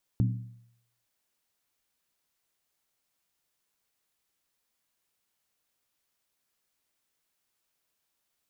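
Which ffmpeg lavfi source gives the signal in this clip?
-f lavfi -i "aevalsrc='0.1*pow(10,-3*t/0.72)*sin(2*PI*118*t)+0.0501*pow(10,-3*t/0.57)*sin(2*PI*188.1*t)+0.0251*pow(10,-3*t/0.493)*sin(2*PI*252*t)+0.0126*pow(10,-3*t/0.475)*sin(2*PI*270.9*t)+0.00631*pow(10,-3*t/0.442)*sin(2*PI*313.1*t)':d=0.86:s=44100"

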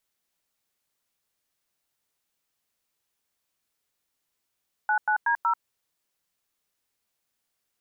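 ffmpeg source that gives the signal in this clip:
-f lavfi -i "aevalsrc='0.0708*clip(min(mod(t,0.186),0.089-mod(t,0.186))/0.002,0,1)*(eq(floor(t/0.186),0)*(sin(2*PI*852*mod(t,0.186))+sin(2*PI*1477*mod(t,0.186)))+eq(floor(t/0.186),1)*(sin(2*PI*852*mod(t,0.186))+sin(2*PI*1477*mod(t,0.186)))+eq(floor(t/0.186),2)*(sin(2*PI*941*mod(t,0.186))+sin(2*PI*1633*mod(t,0.186)))+eq(floor(t/0.186),3)*(sin(2*PI*941*mod(t,0.186))+sin(2*PI*1336*mod(t,0.186))))':d=0.744:s=44100"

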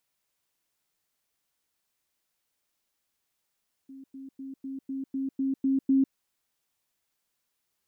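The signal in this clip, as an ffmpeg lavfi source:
-f lavfi -i "aevalsrc='pow(10,(-42.5+3*floor(t/0.25))/20)*sin(2*PI*269*t)*clip(min(mod(t,0.25),0.15-mod(t,0.25))/0.005,0,1)':d=2.25:s=44100"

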